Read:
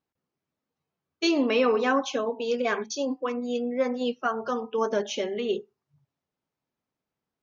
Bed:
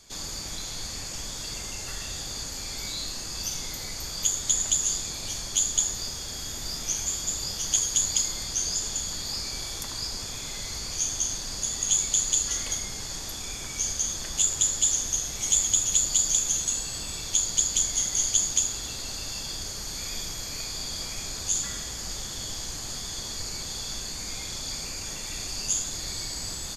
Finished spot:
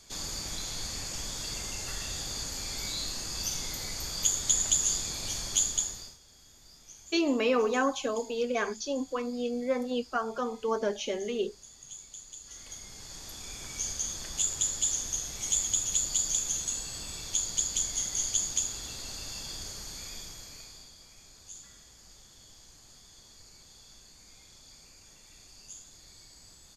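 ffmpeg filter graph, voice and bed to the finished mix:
-filter_complex "[0:a]adelay=5900,volume=-3.5dB[a];[1:a]volume=15dB,afade=t=out:st=5.55:d=0.63:silence=0.0944061,afade=t=in:st=12.4:d=1.34:silence=0.149624,afade=t=out:st=19.66:d=1.29:silence=0.188365[b];[a][b]amix=inputs=2:normalize=0"

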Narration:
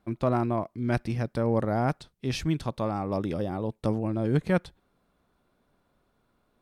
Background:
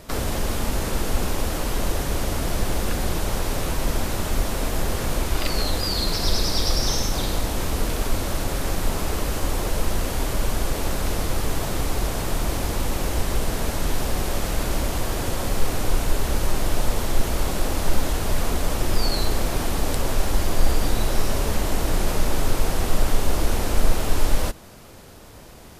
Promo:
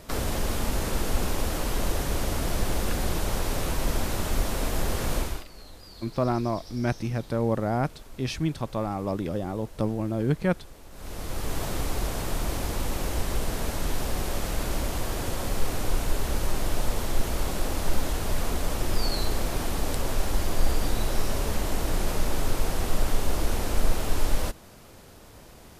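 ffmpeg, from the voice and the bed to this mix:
-filter_complex "[0:a]adelay=5950,volume=0dB[a];[1:a]volume=15.5dB,afade=t=out:st=5.18:d=0.27:silence=0.1,afade=t=in:st=10.91:d=0.7:silence=0.11885[b];[a][b]amix=inputs=2:normalize=0"

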